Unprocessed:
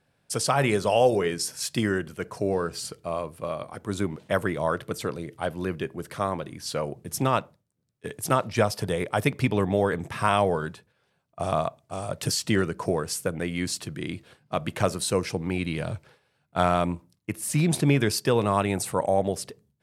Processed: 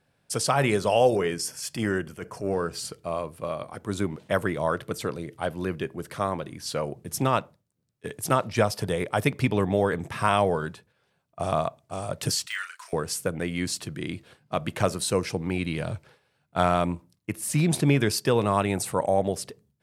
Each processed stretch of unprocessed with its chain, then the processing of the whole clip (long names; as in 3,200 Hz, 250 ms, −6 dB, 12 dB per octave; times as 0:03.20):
0:01.16–0:02.71: transient designer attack −8 dB, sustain 0 dB + notch filter 3,900 Hz, Q 5.1
0:12.46–0:12.93: de-essing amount 85% + high-pass filter 1,400 Hz 24 dB per octave + double-tracking delay 35 ms −6 dB
whole clip: no processing